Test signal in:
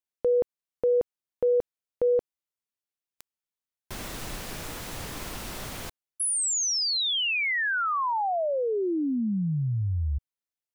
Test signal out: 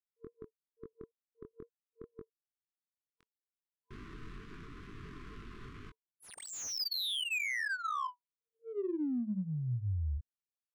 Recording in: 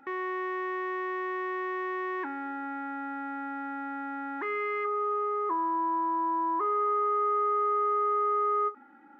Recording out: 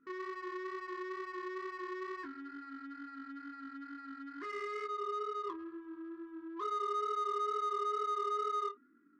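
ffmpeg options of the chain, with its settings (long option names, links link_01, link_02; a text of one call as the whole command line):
ffmpeg -i in.wav -af "afftfilt=real='re*(1-between(b*sr/4096,460,1000))':imag='im*(1-between(b*sr/4096,460,1000))':win_size=4096:overlap=0.75,flanger=delay=20:depth=4.9:speed=2.2,adynamicsmooth=sensitivity=6:basefreq=1300,volume=-5.5dB" out.wav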